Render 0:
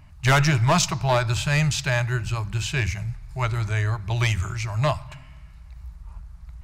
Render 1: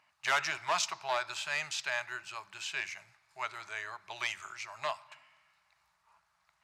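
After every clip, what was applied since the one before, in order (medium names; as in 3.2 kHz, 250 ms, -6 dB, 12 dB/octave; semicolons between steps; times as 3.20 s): high-pass 820 Hz 12 dB/octave; treble shelf 9.6 kHz -12 dB; trim -7 dB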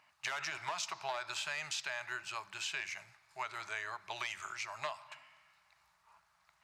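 peak limiter -24.5 dBFS, peak gain reduction 7.5 dB; compression, threshold -37 dBFS, peak gain reduction 7 dB; trim +2 dB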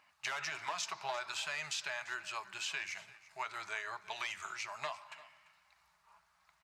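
flange 1.4 Hz, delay 3.7 ms, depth 1.5 ms, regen -52%; delay 343 ms -19 dB; trim +4 dB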